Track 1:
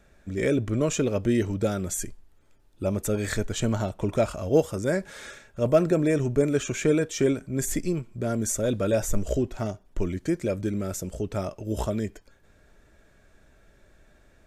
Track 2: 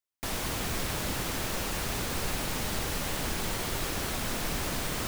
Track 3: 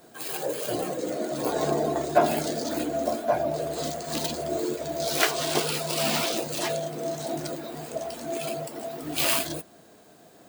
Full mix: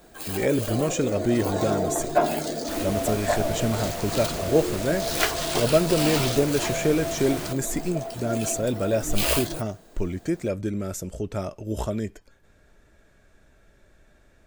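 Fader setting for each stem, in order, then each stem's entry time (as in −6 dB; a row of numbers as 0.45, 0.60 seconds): 0.0, −3.0, −0.5 decibels; 0.00, 2.45, 0.00 seconds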